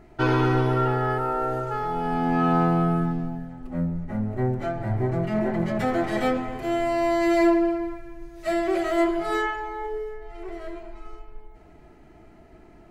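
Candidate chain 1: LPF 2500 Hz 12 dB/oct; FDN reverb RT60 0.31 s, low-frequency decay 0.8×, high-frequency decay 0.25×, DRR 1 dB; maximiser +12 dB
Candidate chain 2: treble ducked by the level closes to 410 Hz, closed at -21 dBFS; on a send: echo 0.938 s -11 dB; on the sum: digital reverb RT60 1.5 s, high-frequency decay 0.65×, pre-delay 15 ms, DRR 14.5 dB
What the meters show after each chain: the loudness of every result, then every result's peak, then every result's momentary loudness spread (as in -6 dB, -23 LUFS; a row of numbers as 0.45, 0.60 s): -12.0, -27.0 LUFS; -1.0, -14.0 dBFS; 14, 14 LU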